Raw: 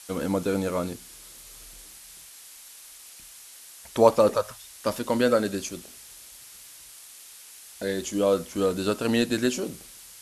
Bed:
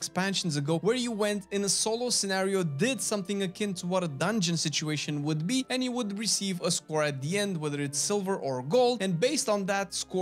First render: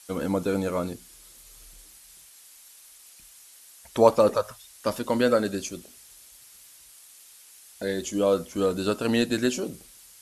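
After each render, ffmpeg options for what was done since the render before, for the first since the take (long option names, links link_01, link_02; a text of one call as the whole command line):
ffmpeg -i in.wav -af "afftdn=noise_reduction=6:noise_floor=-47" out.wav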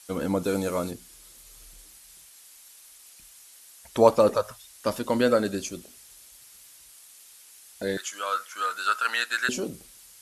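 ffmpeg -i in.wav -filter_complex "[0:a]asettb=1/sr,asplit=3[link_01][link_02][link_03];[link_01]atrim=end=0.444[link_04];[link_02]atrim=start=0.44:end=0.91,asetpts=PTS-STARTPTS,afade=type=in:duration=0.004:curve=qsin,afade=type=out:start_time=0.466:duration=0.004:curve=qsin,bass=frequency=250:gain=-2,treble=frequency=4000:gain=6[link_05];[link_03]atrim=start=0.906[link_06];[link_04][link_05]acrossfade=duration=0.004:curve1=hsin:curve2=qsin[link_07];[link_07][link_06]acrossfade=duration=0.004:curve1=qsin:curve2=hsin,asettb=1/sr,asplit=3[link_08][link_09][link_10];[link_08]atrim=end=7.974[link_11];[link_09]atrim=start=7.97:end=9.49,asetpts=PTS-STARTPTS,afade=type=in:duration=0.004:curve=qsin,afade=type=out:start_time=1.516:duration=0.004:curve=qsin,highpass=frequency=1400:width_type=q:width=5[link_12];[link_10]atrim=start=9.486[link_13];[link_11][link_12]acrossfade=duration=0.004:curve1=hsin:curve2=qsin[link_14];[link_14][link_13]acrossfade=duration=0.004:curve1=qsin:curve2=hsin" out.wav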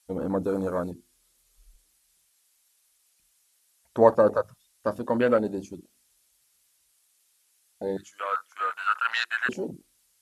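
ffmpeg -i in.wav -af "bandreject=frequency=50:width_type=h:width=6,bandreject=frequency=100:width_type=h:width=6,bandreject=frequency=150:width_type=h:width=6,bandreject=frequency=200:width_type=h:width=6,bandreject=frequency=250:width_type=h:width=6,bandreject=frequency=300:width_type=h:width=6,bandreject=frequency=350:width_type=h:width=6,afwtdn=0.0282" out.wav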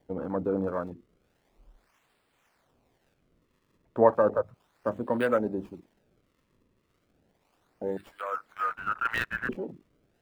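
ffmpeg -i in.wav -filter_complex "[0:a]acrossover=split=150|2800[link_01][link_02][link_03];[link_03]acrusher=samples=33:mix=1:aa=0.000001:lfo=1:lforange=52.8:lforate=0.34[link_04];[link_01][link_02][link_04]amix=inputs=3:normalize=0,acrossover=split=710[link_05][link_06];[link_05]aeval=exprs='val(0)*(1-0.5/2+0.5/2*cos(2*PI*1.8*n/s))':channel_layout=same[link_07];[link_06]aeval=exprs='val(0)*(1-0.5/2-0.5/2*cos(2*PI*1.8*n/s))':channel_layout=same[link_08];[link_07][link_08]amix=inputs=2:normalize=0" out.wav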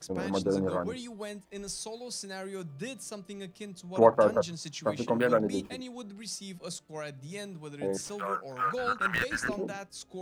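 ffmpeg -i in.wav -i bed.wav -filter_complex "[1:a]volume=-11.5dB[link_01];[0:a][link_01]amix=inputs=2:normalize=0" out.wav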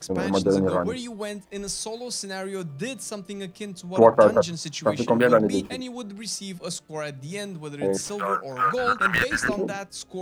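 ffmpeg -i in.wav -af "volume=7.5dB,alimiter=limit=-3dB:level=0:latency=1" out.wav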